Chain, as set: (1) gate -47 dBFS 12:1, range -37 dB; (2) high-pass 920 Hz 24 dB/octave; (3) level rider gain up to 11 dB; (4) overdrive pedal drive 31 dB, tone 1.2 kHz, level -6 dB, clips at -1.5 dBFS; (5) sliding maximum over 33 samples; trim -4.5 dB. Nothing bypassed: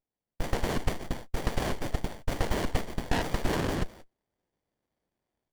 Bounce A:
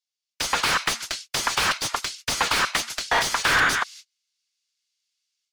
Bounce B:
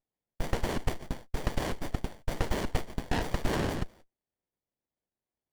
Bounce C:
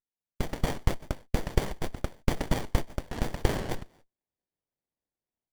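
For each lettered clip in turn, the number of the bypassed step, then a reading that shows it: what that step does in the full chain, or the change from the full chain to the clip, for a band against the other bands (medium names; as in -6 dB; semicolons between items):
5, 125 Hz band -21.0 dB; 3, momentary loudness spread change +1 LU; 4, 125 Hz band +3.0 dB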